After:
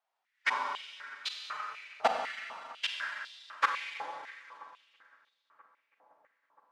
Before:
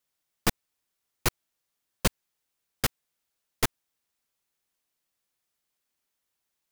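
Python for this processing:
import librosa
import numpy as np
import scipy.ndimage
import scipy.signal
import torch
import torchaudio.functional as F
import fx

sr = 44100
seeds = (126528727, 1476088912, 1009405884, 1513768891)

y = fx.pitch_keep_formants(x, sr, semitones=4.0)
y = fx.spacing_loss(y, sr, db_at_10k=31)
y = fx.echo_filtered(y, sr, ms=327, feedback_pct=82, hz=2900.0, wet_db=-20.5)
y = fx.rev_schroeder(y, sr, rt60_s=2.5, comb_ms=31, drr_db=1.5)
y = fx.filter_held_highpass(y, sr, hz=4.0, low_hz=790.0, high_hz=3700.0)
y = y * 10.0 ** (3.0 / 20.0)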